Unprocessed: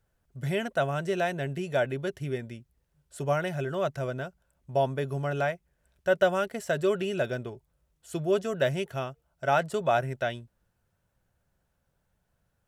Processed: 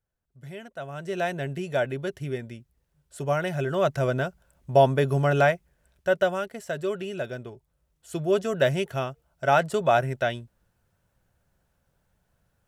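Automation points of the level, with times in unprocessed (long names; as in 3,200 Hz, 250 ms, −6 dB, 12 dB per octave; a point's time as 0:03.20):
0:00.77 −11 dB
0:01.24 +1 dB
0:03.26 +1 dB
0:04.14 +8 dB
0:05.50 +8 dB
0:06.51 −3 dB
0:07.32 −3 dB
0:08.60 +4 dB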